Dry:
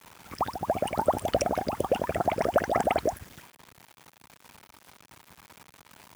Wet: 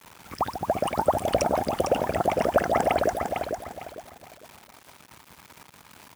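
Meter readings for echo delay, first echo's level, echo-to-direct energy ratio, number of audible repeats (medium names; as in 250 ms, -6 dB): 453 ms, -6.0 dB, -5.5 dB, 3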